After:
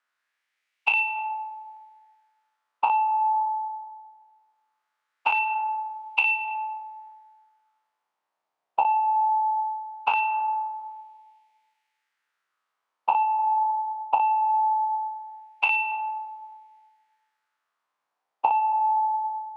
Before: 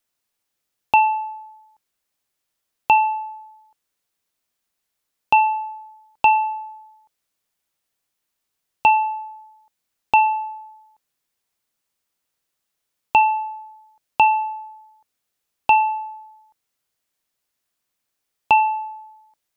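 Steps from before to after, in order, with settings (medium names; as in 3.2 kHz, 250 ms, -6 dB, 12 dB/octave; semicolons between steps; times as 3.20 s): every event in the spectrogram widened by 120 ms; LFO band-pass sine 0.2 Hz 780–2400 Hz; on a send at -11 dB: reverberation RT60 1.7 s, pre-delay 20 ms; on the sum: dynamic bell 2.3 kHz, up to +5 dB, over -35 dBFS, Q 0.91; compression 20:1, threshold -26 dBFS, peak gain reduction 18 dB; trim +6.5 dB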